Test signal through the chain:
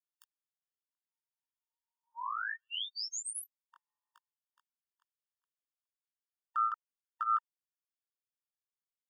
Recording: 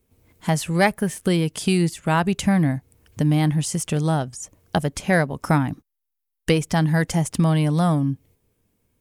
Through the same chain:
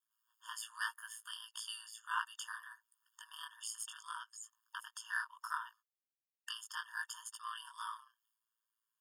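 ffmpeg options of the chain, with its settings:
ffmpeg -i in.wav -af "flanger=delay=16.5:depth=6:speed=0.68,aeval=exprs='val(0)*sin(2*PI*56*n/s)':channel_layout=same,afftfilt=real='re*eq(mod(floor(b*sr/1024/910),2),1)':imag='im*eq(mod(floor(b*sr/1024/910),2),1)':win_size=1024:overlap=0.75,volume=-6dB" out.wav

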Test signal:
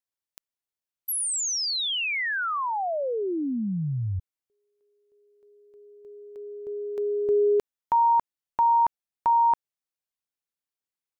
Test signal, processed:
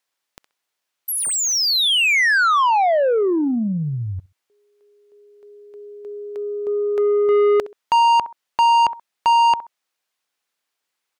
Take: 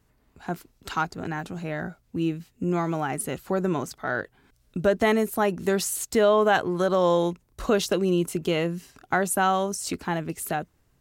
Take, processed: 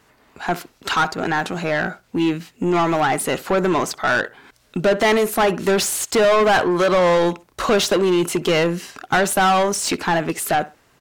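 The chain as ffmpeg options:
ffmpeg -i in.wav -filter_complex "[0:a]asplit=2[link_01][link_02];[link_02]adelay=65,lowpass=frequency=2800:poles=1,volume=-22dB,asplit=2[link_03][link_04];[link_04]adelay=65,lowpass=frequency=2800:poles=1,volume=0.23[link_05];[link_01][link_03][link_05]amix=inputs=3:normalize=0,asplit=2[link_06][link_07];[link_07]highpass=frequency=720:poles=1,volume=24dB,asoftclip=type=tanh:threshold=-8.5dB[link_08];[link_06][link_08]amix=inputs=2:normalize=0,lowpass=frequency=4100:poles=1,volume=-6dB" out.wav

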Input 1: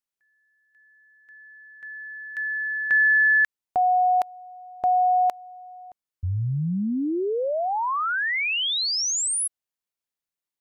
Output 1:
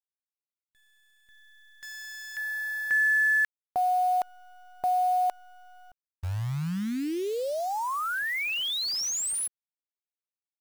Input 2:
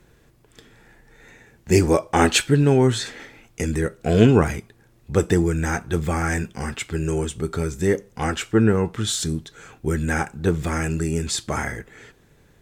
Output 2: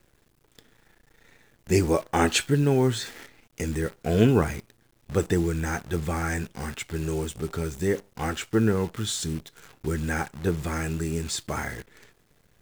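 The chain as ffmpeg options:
ffmpeg -i in.wav -af "acrusher=bits=7:dc=4:mix=0:aa=0.000001,volume=-5dB" out.wav

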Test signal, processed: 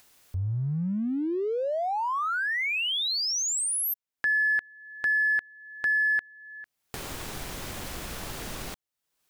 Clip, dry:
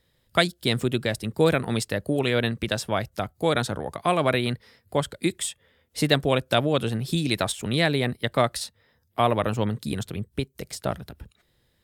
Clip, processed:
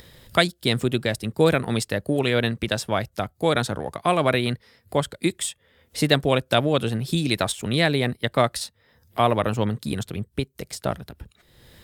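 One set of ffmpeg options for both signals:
ffmpeg -i in.wav -filter_complex "[0:a]asplit=2[link_01][link_02];[link_02]aeval=exprs='sgn(val(0))*max(abs(val(0))-0.00708,0)':channel_layout=same,volume=-8dB[link_03];[link_01][link_03]amix=inputs=2:normalize=0,acompressor=mode=upward:threshold=-31dB:ratio=2.5,volume=-1dB" out.wav

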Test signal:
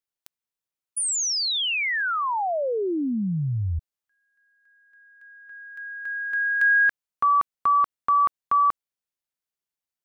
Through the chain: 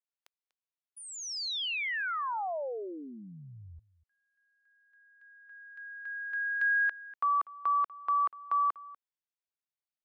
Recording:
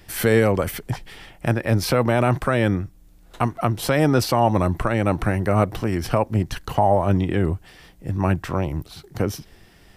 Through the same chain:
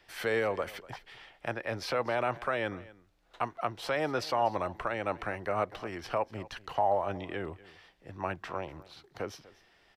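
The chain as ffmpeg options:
ffmpeg -i in.wav -filter_complex "[0:a]acrossover=split=420 5500:gain=0.178 1 0.158[link_01][link_02][link_03];[link_01][link_02][link_03]amix=inputs=3:normalize=0,aecho=1:1:243:0.1,volume=-8dB" out.wav

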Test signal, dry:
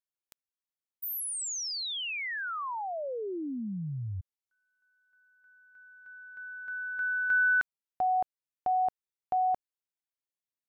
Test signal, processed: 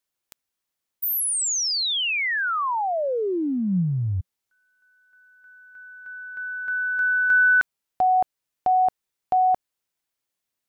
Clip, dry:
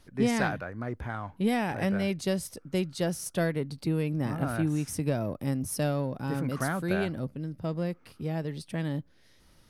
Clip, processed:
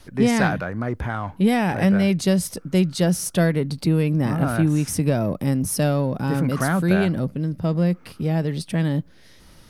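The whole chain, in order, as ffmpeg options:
ffmpeg -i in.wav -filter_complex "[0:a]adynamicequalizer=threshold=0.00631:dfrequency=180:dqfactor=4.6:tfrequency=180:tqfactor=4.6:attack=5:release=100:ratio=0.375:range=3:mode=boostabove:tftype=bell,asplit=2[link_01][link_02];[link_02]acompressor=threshold=-33dB:ratio=6:attack=0.12:release=52:knee=1:detection=peak,volume=-1dB[link_03];[link_01][link_03]amix=inputs=2:normalize=0,volume=5.5dB" out.wav

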